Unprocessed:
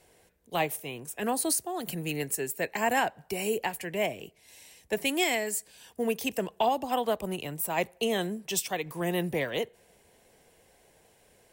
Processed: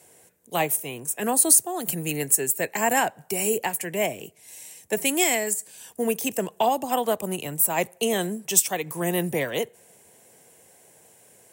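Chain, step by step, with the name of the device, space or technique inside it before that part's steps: 5.53–6.49 de-esser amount 60%; budget condenser microphone (HPF 95 Hz 24 dB/oct; resonant high shelf 5800 Hz +7 dB, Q 1.5); gain +4 dB

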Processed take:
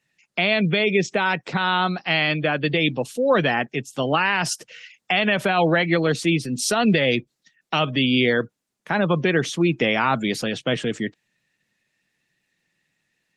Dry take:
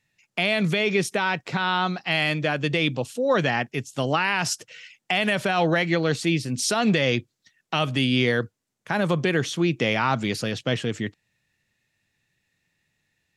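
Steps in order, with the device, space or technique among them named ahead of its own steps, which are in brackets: noise-suppressed video call (HPF 140 Hz 24 dB/oct; spectral gate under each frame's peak -30 dB strong; gain +3 dB; Opus 20 kbps 48000 Hz)

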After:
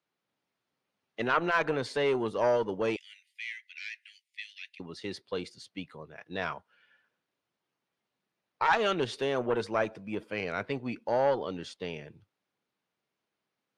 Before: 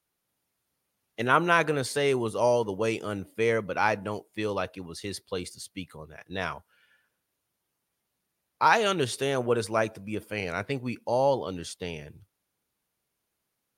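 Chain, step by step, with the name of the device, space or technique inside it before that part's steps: valve radio (BPF 150–4100 Hz; tube stage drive 12 dB, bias 0.3; core saturation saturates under 760 Hz); 2.96–4.8 steep high-pass 1900 Hz 72 dB/oct

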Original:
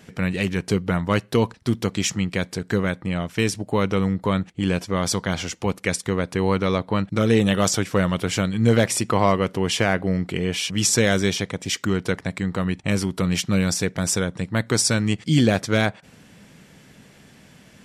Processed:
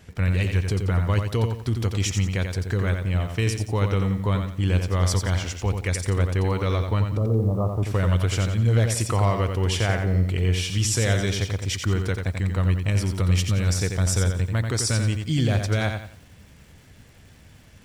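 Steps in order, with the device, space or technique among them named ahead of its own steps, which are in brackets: car stereo with a boomy subwoofer (resonant low shelf 120 Hz +12.5 dB, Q 1.5; limiter -10.5 dBFS, peak gain reduction 7 dB); 7.17–7.83 steep low-pass 1200 Hz 96 dB/oct; lo-fi delay 88 ms, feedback 35%, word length 8-bit, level -6 dB; gain -4 dB

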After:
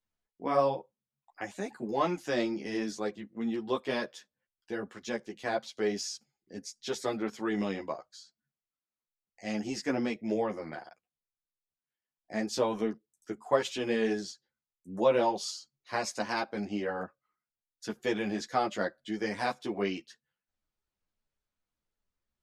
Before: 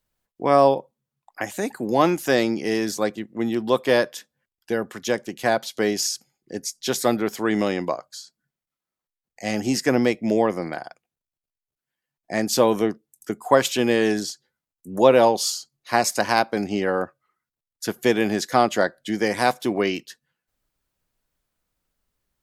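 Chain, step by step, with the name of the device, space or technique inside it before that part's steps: string-machine ensemble chorus (ensemble effect; LPF 6500 Hz 12 dB/oct); gain -7.5 dB

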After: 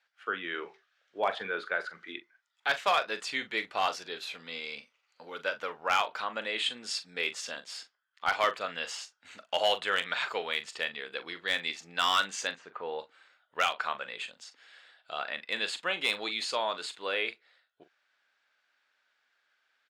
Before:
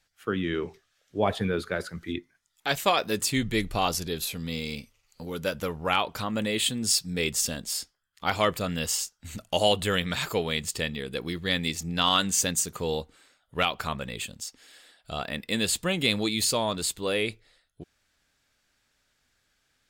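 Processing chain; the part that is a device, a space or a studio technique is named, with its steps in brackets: 12.55–12.99 LPF 1800 Hz 12 dB/oct; megaphone (BPF 700–3200 Hz; bell 1500 Hz +4.5 dB 0.22 oct; hard clip -17.5 dBFS, distortion -17 dB; doubler 41 ms -12 dB)

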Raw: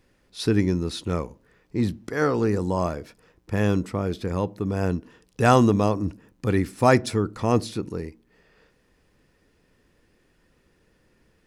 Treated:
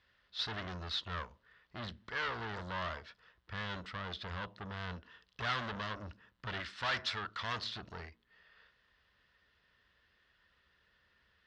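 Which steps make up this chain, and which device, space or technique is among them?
6.6–7.64 tilt shelf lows -5 dB, about 750 Hz; scooped metal amplifier (tube stage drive 29 dB, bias 0.65; speaker cabinet 93–3600 Hz, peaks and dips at 100 Hz -8 dB, 150 Hz -10 dB, 290 Hz +3 dB, 490 Hz -4 dB, 810 Hz -6 dB, 2400 Hz -10 dB; passive tone stack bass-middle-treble 10-0-10); gain +9.5 dB

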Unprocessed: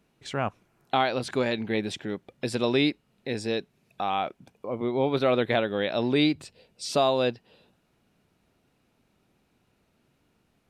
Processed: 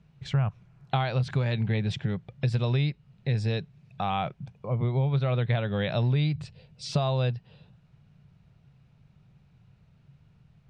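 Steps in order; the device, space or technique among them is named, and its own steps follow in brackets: jukebox (LPF 5100 Hz 12 dB/oct; resonant low shelf 200 Hz +11.5 dB, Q 3; compressor 6:1, threshold -22 dBFS, peak gain reduction 9.5 dB)

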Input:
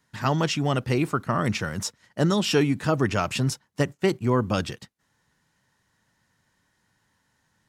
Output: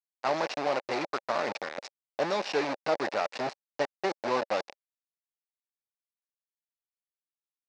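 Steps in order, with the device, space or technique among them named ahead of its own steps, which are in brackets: hand-held game console (bit-crush 4-bit; speaker cabinet 430–4800 Hz, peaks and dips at 570 Hz +7 dB, 810 Hz +6 dB, 1300 Hz -3 dB, 3200 Hz -9 dB); gain -5.5 dB

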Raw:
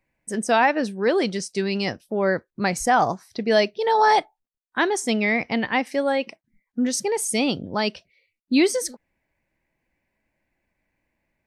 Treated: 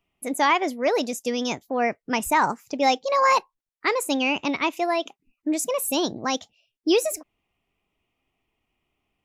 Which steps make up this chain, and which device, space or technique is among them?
nightcore (varispeed +24%); gain -1.5 dB

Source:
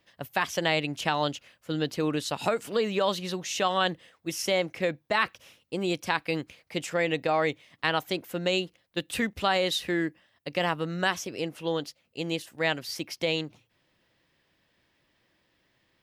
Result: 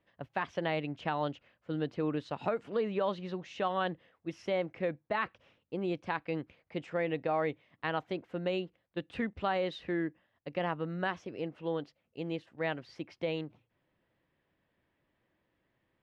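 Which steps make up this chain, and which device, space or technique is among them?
phone in a pocket (LPF 3400 Hz 12 dB/oct; high shelf 2400 Hz -11.5 dB); gain -4.5 dB

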